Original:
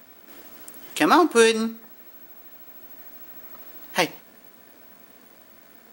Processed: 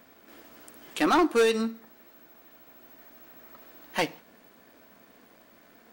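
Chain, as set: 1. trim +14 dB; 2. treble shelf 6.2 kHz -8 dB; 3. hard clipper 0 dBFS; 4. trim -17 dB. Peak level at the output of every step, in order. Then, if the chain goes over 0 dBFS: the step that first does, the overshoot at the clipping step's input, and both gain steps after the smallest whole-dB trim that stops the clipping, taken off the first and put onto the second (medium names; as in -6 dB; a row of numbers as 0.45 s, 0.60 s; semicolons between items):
+11.0 dBFS, +10.0 dBFS, 0.0 dBFS, -17.0 dBFS; step 1, 10.0 dB; step 1 +4 dB, step 4 -7 dB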